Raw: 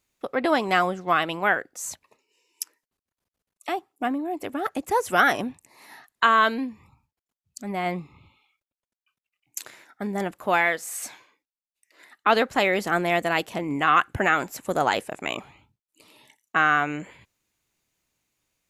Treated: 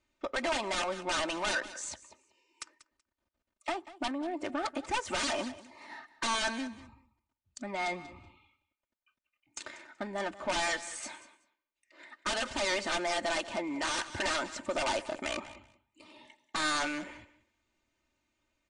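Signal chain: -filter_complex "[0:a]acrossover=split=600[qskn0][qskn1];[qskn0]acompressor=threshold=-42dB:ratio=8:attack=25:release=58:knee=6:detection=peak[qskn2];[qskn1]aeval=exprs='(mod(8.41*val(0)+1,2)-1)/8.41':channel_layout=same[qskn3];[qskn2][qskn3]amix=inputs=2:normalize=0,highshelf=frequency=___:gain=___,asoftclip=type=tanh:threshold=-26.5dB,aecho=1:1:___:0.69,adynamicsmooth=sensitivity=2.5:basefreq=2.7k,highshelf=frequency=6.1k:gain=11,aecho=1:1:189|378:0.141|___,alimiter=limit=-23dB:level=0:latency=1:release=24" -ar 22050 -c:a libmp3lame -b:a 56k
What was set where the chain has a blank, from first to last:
2.7k, 2, 3.3, 0.0254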